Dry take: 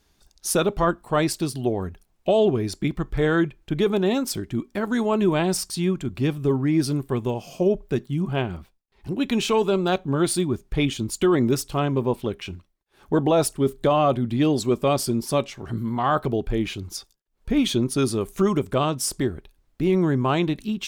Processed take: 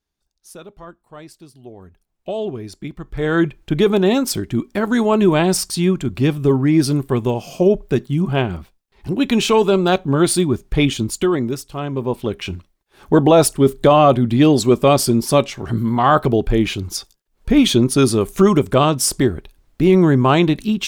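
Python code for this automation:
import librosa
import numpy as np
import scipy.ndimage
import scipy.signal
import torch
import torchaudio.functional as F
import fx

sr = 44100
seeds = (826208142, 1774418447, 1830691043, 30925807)

y = fx.gain(x, sr, db=fx.line((1.52, -17.0), (2.32, -5.5), (3.01, -5.5), (3.46, 6.5), (11.02, 6.5), (11.66, -4.5), (12.5, 8.0)))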